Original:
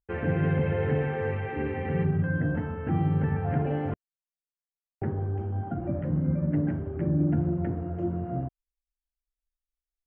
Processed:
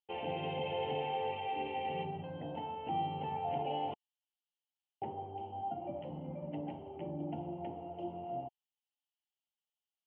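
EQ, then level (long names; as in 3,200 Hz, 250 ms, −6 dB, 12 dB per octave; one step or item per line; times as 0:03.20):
pair of resonant band-passes 1,600 Hz, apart 1.8 octaves
parametric band 1,100 Hz −8.5 dB 0.87 octaves
+11.0 dB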